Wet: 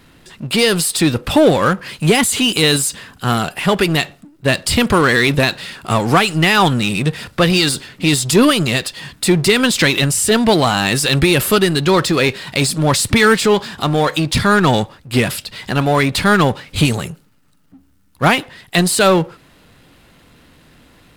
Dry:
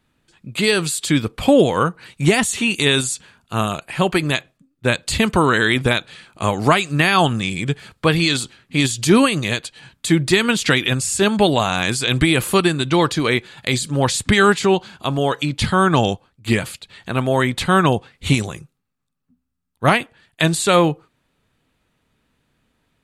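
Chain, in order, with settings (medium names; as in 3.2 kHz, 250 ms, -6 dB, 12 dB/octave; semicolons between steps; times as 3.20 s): power-law waveshaper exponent 0.7; speed mistake 44.1 kHz file played as 48 kHz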